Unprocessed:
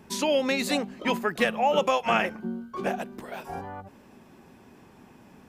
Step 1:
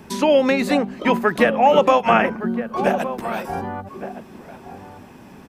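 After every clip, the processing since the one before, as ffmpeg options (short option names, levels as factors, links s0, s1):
-filter_complex "[0:a]bandreject=f=7000:w=24,acrossover=split=510|2200[s0][s1][s2];[s2]acompressor=threshold=0.00708:ratio=6[s3];[s0][s1][s3]amix=inputs=3:normalize=0,asplit=2[s4][s5];[s5]adelay=1166,volume=0.282,highshelf=f=4000:g=-26.2[s6];[s4][s6]amix=inputs=2:normalize=0,volume=2.82"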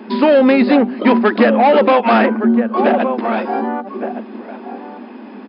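-af "asoftclip=type=tanh:threshold=0.178,afftfilt=real='re*between(b*sr/4096,200,5200)':imag='im*between(b*sr/4096,200,5200)':win_size=4096:overlap=0.75,aemphasis=mode=reproduction:type=bsi,volume=2.37"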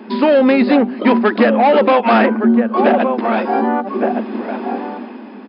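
-af "dynaudnorm=f=100:g=13:m=3.55,volume=0.891"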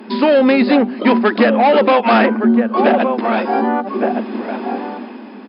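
-af "aemphasis=mode=production:type=cd"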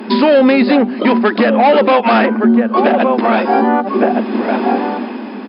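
-af "alimiter=limit=0.282:level=0:latency=1:release=495,volume=2.51"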